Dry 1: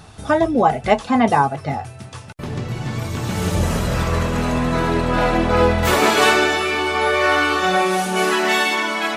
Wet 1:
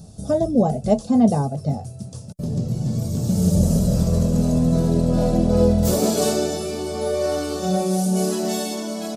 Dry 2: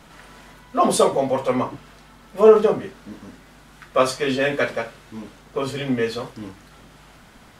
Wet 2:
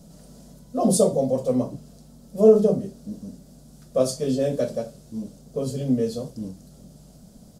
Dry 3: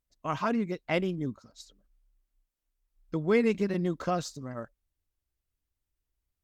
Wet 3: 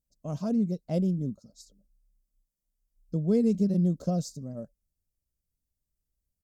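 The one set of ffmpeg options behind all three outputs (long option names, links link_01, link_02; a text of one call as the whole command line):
ffmpeg -i in.wav -af "firequalizer=gain_entry='entry(110,0);entry(180,8);entry(320,-5);entry(590,0);entry(900,-17);entry(2000,-25);entry(4800,-2);entry(7600,1)':delay=0.05:min_phase=1" out.wav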